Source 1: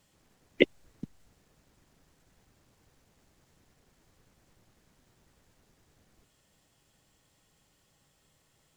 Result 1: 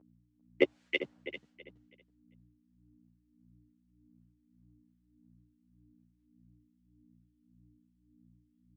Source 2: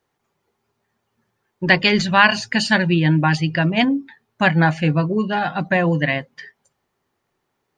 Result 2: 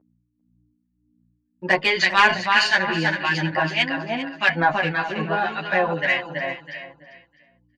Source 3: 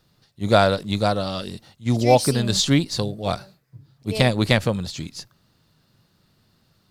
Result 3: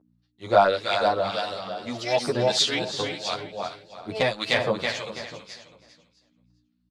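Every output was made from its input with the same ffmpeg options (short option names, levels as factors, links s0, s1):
-filter_complex "[0:a]agate=range=0.0224:threshold=0.00501:ratio=3:detection=peak,asplit=2[s0][s1];[s1]aecho=0:1:327|654|981|1308:0.562|0.157|0.0441|0.0123[s2];[s0][s2]amix=inputs=2:normalize=0,aeval=exprs='val(0)+0.00447*(sin(2*PI*60*n/s)+sin(2*PI*2*60*n/s)/2+sin(2*PI*3*60*n/s)/3+sin(2*PI*4*60*n/s)/4+sin(2*PI*5*60*n/s)/5)':c=same,highpass=160,lowpass=6100,bass=f=250:g=-7,treble=f=4000:g=-4,acontrast=25,acrossover=split=1400[s3][s4];[s3]aeval=exprs='val(0)*(1-0.7/2+0.7/2*cos(2*PI*1.7*n/s))':c=same[s5];[s4]aeval=exprs='val(0)*(1-0.7/2-0.7/2*cos(2*PI*1.7*n/s))':c=same[s6];[s5][s6]amix=inputs=2:normalize=0,equalizer=f=250:w=0.93:g=-8.5,asplit=2[s7][s8];[s8]aecho=0:1:396:0.211[s9];[s7][s9]amix=inputs=2:normalize=0,asplit=2[s10][s11];[s11]adelay=10.3,afreqshift=2.7[s12];[s10][s12]amix=inputs=2:normalize=1,volume=1.19"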